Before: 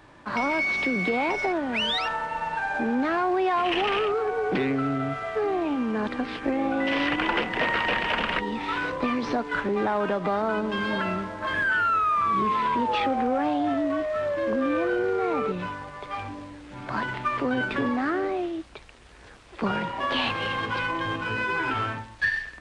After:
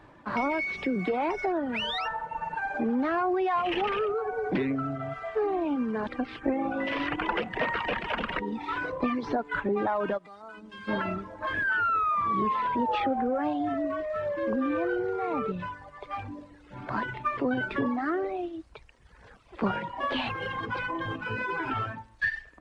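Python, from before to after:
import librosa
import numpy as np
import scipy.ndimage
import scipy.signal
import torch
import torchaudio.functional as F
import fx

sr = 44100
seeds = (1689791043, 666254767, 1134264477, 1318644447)

y = fx.pre_emphasis(x, sr, coefficient=0.8, at=(10.17, 10.87), fade=0.02)
y = fx.dereverb_blind(y, sr, rt60_s=1.5)
y = fx.high_shelf(y, sr, hz=2800.0, db=-10.5)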